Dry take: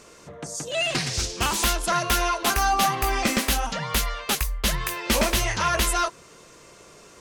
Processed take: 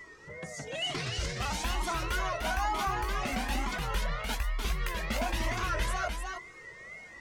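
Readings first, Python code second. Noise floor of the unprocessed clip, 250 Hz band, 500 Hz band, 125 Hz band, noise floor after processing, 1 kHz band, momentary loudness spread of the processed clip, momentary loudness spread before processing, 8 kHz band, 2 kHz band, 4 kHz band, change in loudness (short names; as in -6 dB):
-50 dBFS, -9.0 dB, -9.0 dB, -5.0 dB, -50 dBFS, -8.5 dB, 12 LU, 5 LU, -15.0 dB, -7.0 dB, -10.0 dB, -9.5 dB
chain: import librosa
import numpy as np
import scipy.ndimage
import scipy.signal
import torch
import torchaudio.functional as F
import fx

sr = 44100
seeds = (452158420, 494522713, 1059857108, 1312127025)

p1 = fx.high_shelf(x, sr, hz=5000.0, db=-11.5)
p2 = fx.over_compress(p1, sr, threshold_db=-29.0, ratio=-1.0)
p3 = p1 + (p2 * librosa.db_to_amplitude(-3.0))
p4 = p3 + 10.0 ** (-36.0 / 20.0) * np.sin(2.0 * np.pi * 2000.0 * np.arange(len(p3)) / sr)
p5 = fx.wow_flutter(p4, sr, seeds[0], rate_hz=2.1, depth_cents=140.0)
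p6 = p5 + 10.0 ** (-4.5 / 20.0) * np.pad(p5, (int(299 * sr / 1000.0), 0))[:len(p5)]
p7 = fx.comb_cascade(p6, sr, direction='rising', hz=1.1)
y = p7 * librosa.db_to_amplitude(-7.5)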